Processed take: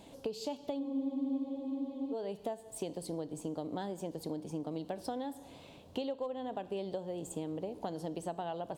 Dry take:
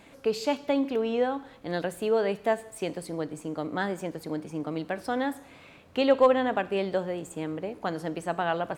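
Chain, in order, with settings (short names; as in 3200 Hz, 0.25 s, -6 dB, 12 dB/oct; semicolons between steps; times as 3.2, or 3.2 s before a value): band shelf 1700 Hz -12 dB 1.3 oct; compressor 16:1, threshold -34 dBFS, peak gain reduction 19.5 dB; spectral freeze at 0.82, 1.31 s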